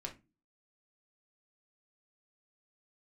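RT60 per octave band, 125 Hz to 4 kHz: 0.40, 0.50, 0.30, 0.25, 0.25, 0.15 seconds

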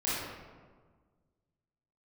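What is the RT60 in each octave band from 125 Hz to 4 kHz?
2.1, 1.9, 1.6, 1.5, 1.1, 0.80 seconds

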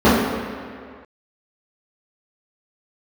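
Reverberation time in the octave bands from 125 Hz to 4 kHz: 1.7, 1.9, 2.0, 2.1, 2.1, 1.6 seconds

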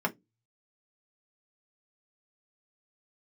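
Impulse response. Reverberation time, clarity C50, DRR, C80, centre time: 0.15 s, 24.0 dB, 2.0 dB, 36.0 dB, 6 ms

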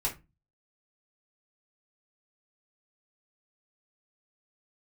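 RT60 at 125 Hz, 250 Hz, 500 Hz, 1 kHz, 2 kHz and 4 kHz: 0.50, 0.40, 0.25, 0.25, 0.20, 0.20 seconds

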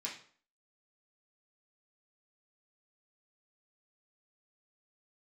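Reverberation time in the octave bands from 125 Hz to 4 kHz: 0.45, 0.50, 0.50, 0.50, 0.45, 0.40 seconds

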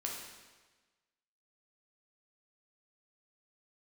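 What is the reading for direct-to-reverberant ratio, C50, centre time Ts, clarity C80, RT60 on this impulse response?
−2.0 dB, 2.0 dB, 61 ms, 4.5 dB, 1.3 s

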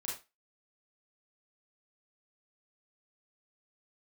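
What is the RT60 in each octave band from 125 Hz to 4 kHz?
0.25, 0.25, 0.25, 0.25, 0.25, 0.25 seconds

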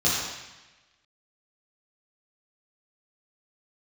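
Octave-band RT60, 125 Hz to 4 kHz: 1.2, 1.1, 1.0, 1.1, 1.3, 1.1 seconds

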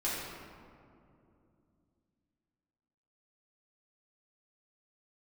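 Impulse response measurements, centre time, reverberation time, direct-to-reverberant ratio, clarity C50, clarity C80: 116 ms, 2.6 s, −9.5 dB, −1.5 dB, 0.5 dB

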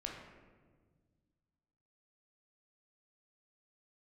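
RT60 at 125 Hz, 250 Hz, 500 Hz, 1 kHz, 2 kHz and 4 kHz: 2.5, 2.4, 1.8, 1.3, 1.1, 0.85 seconds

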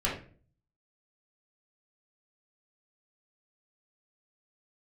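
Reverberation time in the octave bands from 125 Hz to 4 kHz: 0.75, 0.60, 0.50, 0.35, 0.40, 0.30 seconds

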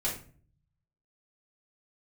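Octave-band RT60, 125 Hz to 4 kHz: 1.2, 0.70, 0.50, 0.40, 0.35, 0.30 seconds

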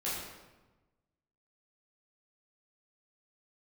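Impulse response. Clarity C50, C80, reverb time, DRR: 0.0 dB, 3.0 dB, 1.2 s, −9.0 dB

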